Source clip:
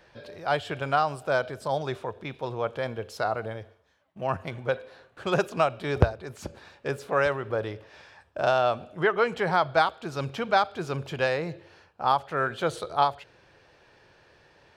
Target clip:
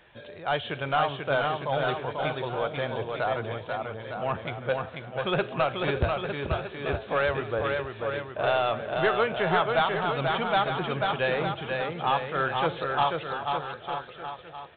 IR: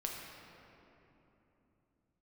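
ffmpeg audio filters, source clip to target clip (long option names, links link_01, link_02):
-af "flanger=delay=0.9:depth=8:regen=-85:speed=0.29:shape=sinusoidal,aemphasis=mode=production:type=75fm,aresample=8000,asoftclip=type=tanh:threshold=-21dB,aresample=44100,aecho=1:1:490|906.5|1261|1561|1817:0.631|0.398|0.251|0.158|0.1,volume=4.5dB"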